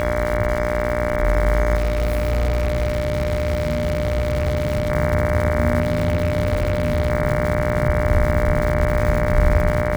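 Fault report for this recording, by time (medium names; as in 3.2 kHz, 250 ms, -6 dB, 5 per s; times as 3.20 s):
buzz 60 Hz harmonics 38 -25 dBFS
crackle 300 per s -25 dBFS
whine 600 Hz -23 dBFS
1.76–4.90 s: clipped -16 dBFS
5.80–7.10 s: clipped -14 dBFS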